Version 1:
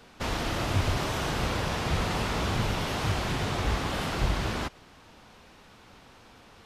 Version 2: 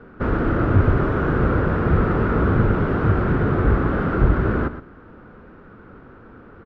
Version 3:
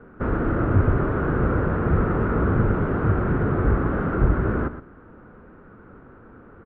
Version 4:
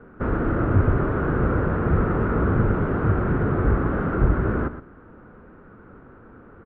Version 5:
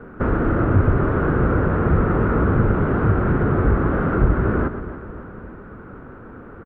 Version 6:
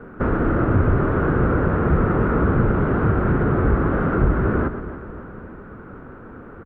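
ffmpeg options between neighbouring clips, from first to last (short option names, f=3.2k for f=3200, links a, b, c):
-af "lowpass=f=1.4k:t=q:w=4.5,lowshelf=f=580:t=q:w=1.5:g=10.5,aecho=1:1:120:0.251"
-af "lowpass=2.1k,volume=-2.5dB"
-af anull
-filter_complex "[0:a]aecho=1:1:286|572|858|1144|1430:0.126|0.073|0.0424|0.0246|0.0142,asplit=2[a][b];[b]acompressor=threshold=-28dB:ratio=6,volume=2.5dB[c];[a][c]amix=inputs=2:normalize=0"
-af "bandreject=f=50:t=h:w=6,bandreject=f=100:t=h:w=6"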